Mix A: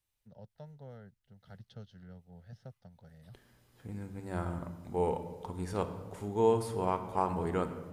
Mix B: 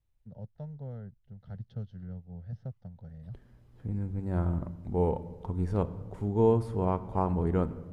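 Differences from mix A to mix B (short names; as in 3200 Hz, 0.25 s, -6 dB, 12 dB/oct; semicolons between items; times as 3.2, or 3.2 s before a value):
second voice: send -6.5 dB; master: add tilt -3.5 dB/oct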